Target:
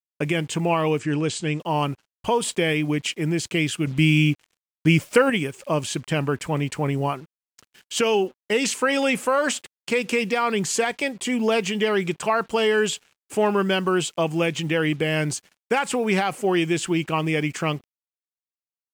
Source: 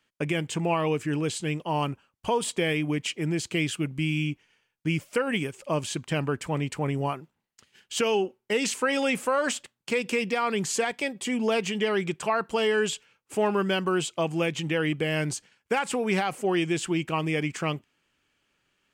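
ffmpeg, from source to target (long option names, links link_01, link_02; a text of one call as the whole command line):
ffmpeg -i in.wav -filter_complex "[0:a]acrusher=bits=8:mix=0:aa=0.5,asettb=1/sr,asplit=3[link_01][link_02][link_03];[link_01]atrim=end=0.994[link_04];[link_02]atrim=start=0.99:end=1.6,asetpts=PTS-STARTPTS,afade=type=in:duration=0.004:curve=qsin,afade=type=out:start_time=0.606:duration=0.004:curve=qsin,lowpass=frequency=8600:width=0.5412,lowpass=frequency=8600:width=1.3066[link_05];[link_03]atrim=start=1.596[link_06];[link_04][link_05]acrossfade=duration=0.004:curve1=hsin:curve2=qsin[link_07];[link_07][link_06]acrossfade=duration=0.004:curve1=qsin:curve2=hsin,asettb=1/sr,asplit=3[link_08][link_09][link_10];[link_08]atrim=end=3.874[link_11];[link_09]atrim=start=3.87:end=5.3,asetpts=PTS-STARTPTS,afade=type=in:duration=0.004:curve=qsin,afade=type=out:start_time=1.426:duration=0.004:curve=qsin,acontrast=38[link_12];[link_10]atrim=start=5.296[link_13];[link_11][link_12]acrossfade=duration=0.004:curve1=hsin:curve2=qsin[link_14];[link_14][link_13]acrossfade=duration=0.004:curve1=qsin:curve2=hsin,volume=4dB" out.wav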